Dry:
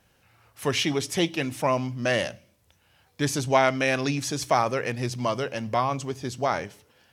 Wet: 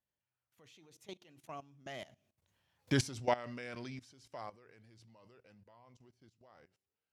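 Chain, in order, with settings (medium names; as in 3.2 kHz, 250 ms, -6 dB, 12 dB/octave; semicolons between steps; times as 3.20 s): Doppler pass-by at 2.91 s, 31 m/s, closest 2.1 m; treble shelf 11 kHz -4.5 dB; level held to a coarse grid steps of 17 dB; trim +6.5 dB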